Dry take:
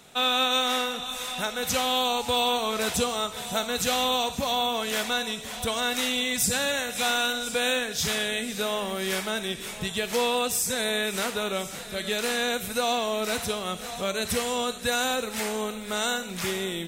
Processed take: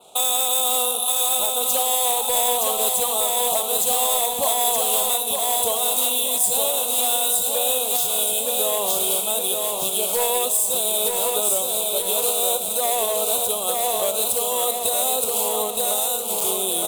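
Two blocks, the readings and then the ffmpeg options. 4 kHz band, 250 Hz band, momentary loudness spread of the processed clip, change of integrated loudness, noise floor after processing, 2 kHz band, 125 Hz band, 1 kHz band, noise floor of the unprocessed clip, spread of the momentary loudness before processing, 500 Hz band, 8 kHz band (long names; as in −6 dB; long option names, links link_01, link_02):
+2.0 dB, −7.0 dB, 3 LU, +7.5 dB, −26 dBFS, −7.5 dB, can't be measured, +4.0 dB, −37 dBFS, 6 LU, +4.0 dB, +12.0 dB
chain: -filter_complex "[0:a]acontrast=85,acrossover=split=460 5100:gain=0.112 1 0.2[link_01][link_02][link_03];[link_01][link_02][link_03]amix=inputs=3:normalize=0,bandreject=frequency=60:width_type=h:width=6,bandreject=frequency=120:width_type=h:width=6,bandreject=frequency=180:width_type=h:width=6,bandreject=frequency=240:width_type=h:width=6,adynamicsmooth=sensitivity=7:basefreq=4300,adynamicequalizer=threshold=0.00708:dfrequency=5900:dqfactor=1.9:tfrequency=5900:tqfactor=1.9:attack=5:release=100:ratio=0.375:range=2.5:mode=cutabove:tftype=bell,asuperstop=centerf=1800:order=4:qfactor=0.74,volume=19.5dB,asoftclip=hard,volume=-19.5dB,aecho=1:1:917|1834|2751|3668|4585|5502:0.596|0.292|0.143|0.0701|0.0343|0.0168,aexciter=amount=8.6:drive=9.2:freq=7800,alimiter=limit=-12dB:level=0:latency=1:release=285,volume=3dB"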